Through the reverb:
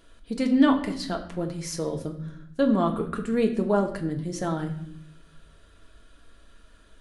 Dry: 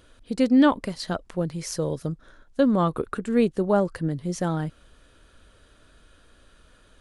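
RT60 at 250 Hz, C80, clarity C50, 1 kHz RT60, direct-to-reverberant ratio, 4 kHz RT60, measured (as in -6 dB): 1.1 s, 13.0 dB, 10.5 dB, 0.60 s, 2.0 dB, 0.55 s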